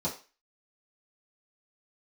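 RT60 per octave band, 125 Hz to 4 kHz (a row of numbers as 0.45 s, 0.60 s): 0.20 s, 0.30 s, 0.30 s, 0.35 s, 0.35 s, 0.35 s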